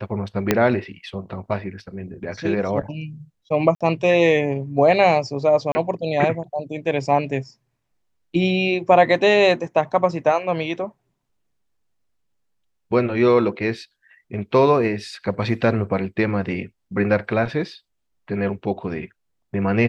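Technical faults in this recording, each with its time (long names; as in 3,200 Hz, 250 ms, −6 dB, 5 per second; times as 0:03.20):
0:00.51: click −2 dBFS
0:03.75–0:03.81: drop-out 56 ms
0:05.72–0:05.75: drop-out 30 ms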